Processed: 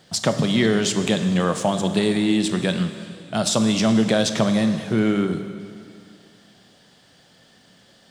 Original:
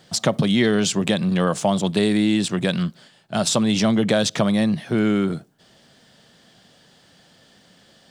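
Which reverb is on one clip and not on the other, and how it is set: plate-style reverb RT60 2.4 s, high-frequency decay 1×, DRR 7.5 dB; trim -1 dB

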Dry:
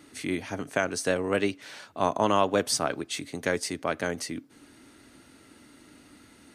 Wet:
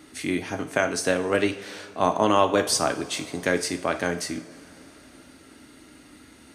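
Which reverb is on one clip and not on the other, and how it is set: two-slope reverb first 0.48 s, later 4.1 s, from -20 dB, DRR 6.5 dB; trim +3 dB

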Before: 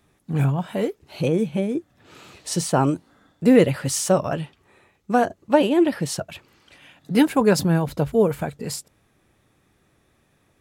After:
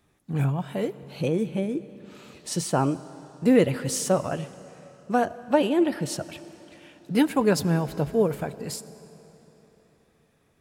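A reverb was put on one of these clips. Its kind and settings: algorithmic reverb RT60 3.7 s, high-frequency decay 0.9×, pre-delay 40 ms, DRR 16 dB; trim -4 dB

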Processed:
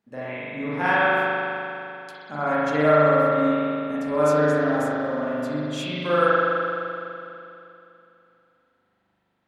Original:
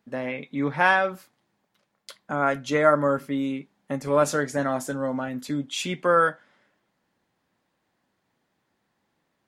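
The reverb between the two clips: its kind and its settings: spring tank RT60 2.9 s, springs 40 ms, chirp 25 ms, DRR -10 dB; trim -8 dB

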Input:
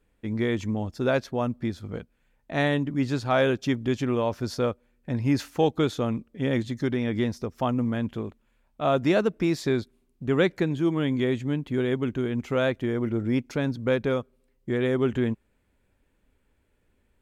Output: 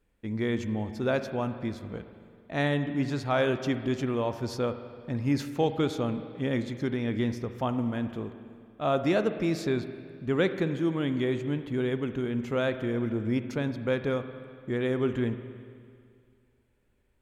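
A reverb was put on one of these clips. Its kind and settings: spring tank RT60 2.2 s, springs 42/55 ms, chirp 40 ms, DRR 9.5 dB; trim -3.5 dB

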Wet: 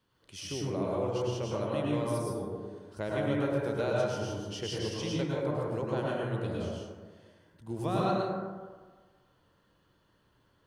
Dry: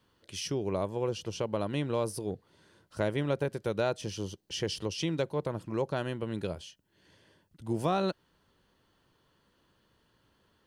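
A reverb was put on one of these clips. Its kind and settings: plate-style reverb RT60 1.5 s, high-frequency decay 0.35×, pre-delay 90 ms, DRR -5 dB; trim -6 dB

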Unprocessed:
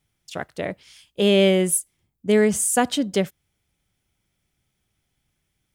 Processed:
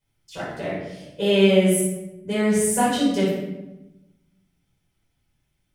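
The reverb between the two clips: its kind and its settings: simulated room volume 400 m³, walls mixed, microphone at 5 m; trim -12 dB

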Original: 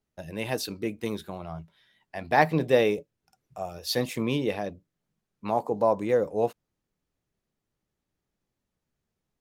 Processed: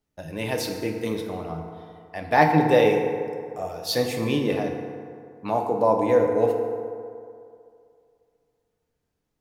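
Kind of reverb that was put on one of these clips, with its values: FDN reverb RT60 2.4 s, low-frequency decay 0.85×, high-frequency decay 0.45×, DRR 2 dB; trim +1.5 dB

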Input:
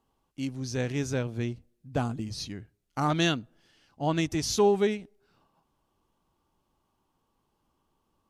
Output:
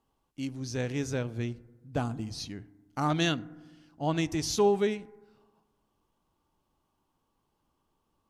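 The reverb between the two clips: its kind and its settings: FDN reverb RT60 1.3 s, low-frequency decay 1.3×, high-frequency decay 0.3×, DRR 18 dB; trim -2 dB

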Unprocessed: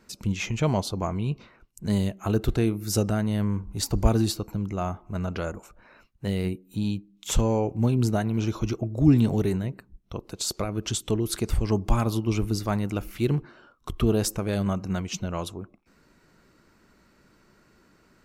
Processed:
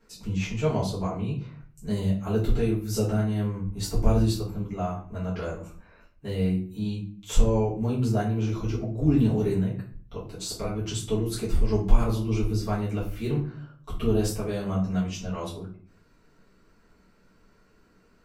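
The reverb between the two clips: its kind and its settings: simulated room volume 40 m³, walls mixed, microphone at 1.7 m; trim -13 dB

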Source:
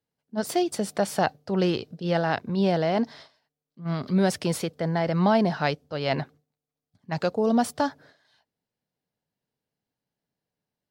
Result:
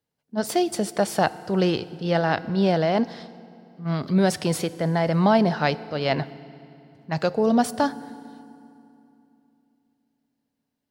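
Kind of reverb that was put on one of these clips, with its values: FDN reverb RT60 2.8 s, low-frequency decay 1.3×, high-frequency decay 0.8×, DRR 16 dB; trim +2.5 dB

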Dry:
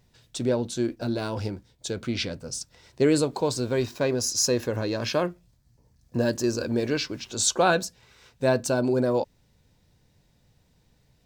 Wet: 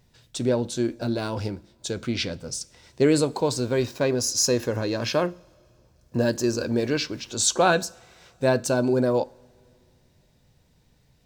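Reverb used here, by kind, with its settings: two-slope reverb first 0.42 s, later 2.7 s, from -18 dB, DRR 18.5 dB; trim +1.5 dB

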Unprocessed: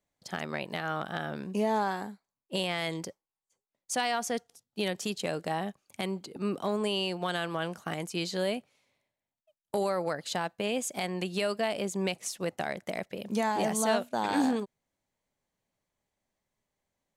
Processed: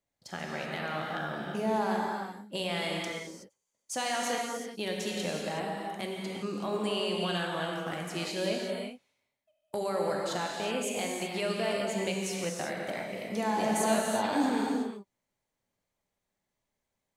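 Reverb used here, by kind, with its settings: gated-style reverb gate 400 ms flat, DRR -2 dB; trim -4 dB

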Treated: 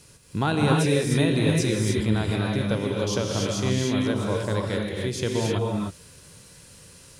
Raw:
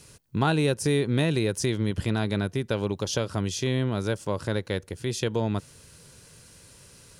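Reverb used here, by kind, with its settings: gated-style reverb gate 330 ms rising, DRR -1.5 dB; trim -1 dB

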